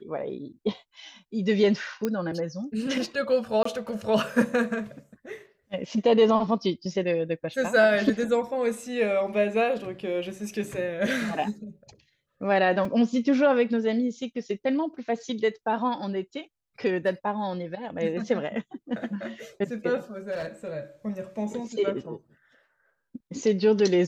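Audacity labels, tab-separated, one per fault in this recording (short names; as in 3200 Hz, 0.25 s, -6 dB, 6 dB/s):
2.050000	2.050000	pop -14 dBFS
3.630000	3.650000	gap 24 ms
12.850000	12.850000	gap 3.1 ms
20.310000	20.720000	clipped -28 dBFS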